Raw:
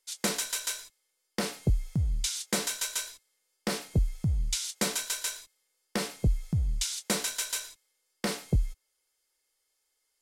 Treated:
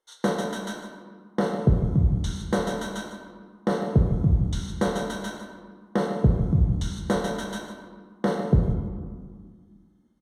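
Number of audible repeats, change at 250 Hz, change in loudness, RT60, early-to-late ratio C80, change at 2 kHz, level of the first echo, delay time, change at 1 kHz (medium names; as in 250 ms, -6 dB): 1, +10.5 dB, +5.0 dB, 1.9 s, 5.5 dB, +1.5 dB, -12.5 dB, 151 ms, +9.0 dB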